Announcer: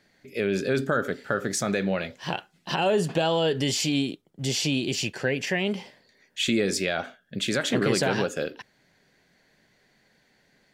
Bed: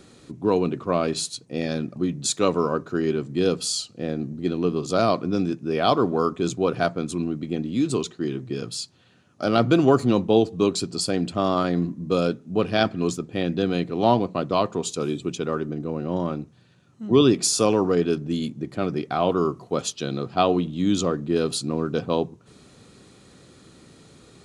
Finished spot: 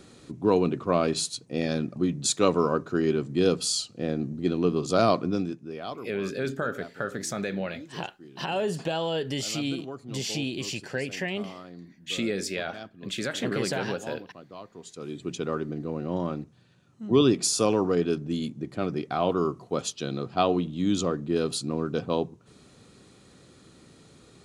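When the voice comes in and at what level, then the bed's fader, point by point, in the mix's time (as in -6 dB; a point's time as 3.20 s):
5.70 s, -5.0 dB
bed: 5.24 s -1 dB
6.10 s -21.5 dB
14.67 s -21.5 dB
15.35 s -3.5 dB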